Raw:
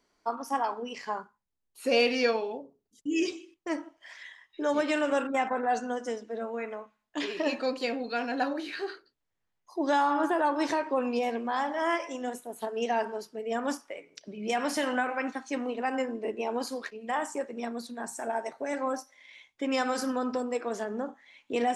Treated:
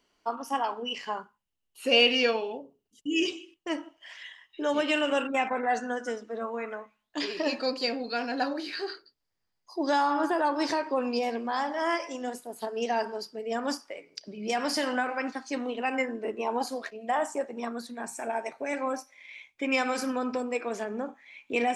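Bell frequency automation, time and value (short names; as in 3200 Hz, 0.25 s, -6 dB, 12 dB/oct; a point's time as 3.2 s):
bell +13.5 dB 0.23 oct
5.23 s 2900 Hz
6.59 s 1000 Hz
7.19 s 4800 Hz
15.5 s 4800 Hz
16.74 s 670 Hz
17.44 s 670 Hz
17.99 s 2400 Hz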